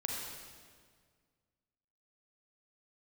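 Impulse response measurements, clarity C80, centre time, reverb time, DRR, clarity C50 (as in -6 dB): 1.5 dB, 93 ms, 1.8 s, -1.5 dB, -0.5 dB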